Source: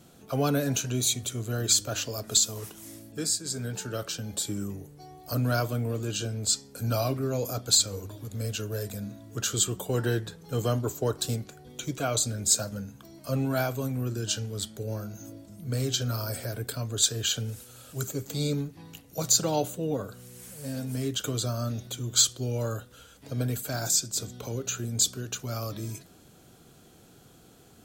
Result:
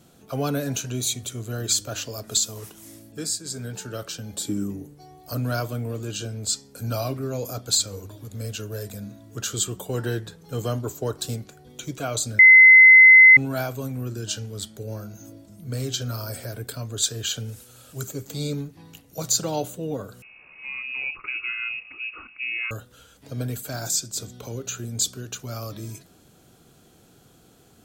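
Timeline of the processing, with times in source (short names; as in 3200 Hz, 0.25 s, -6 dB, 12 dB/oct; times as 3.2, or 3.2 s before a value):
4.39–4.94 bell 260 Hz +11.5 dB 0.74 oct
12.39–13.37 bleep 2050 Hz -6.5 dBFS
20.22–22.71 inverted band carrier 2700 Hz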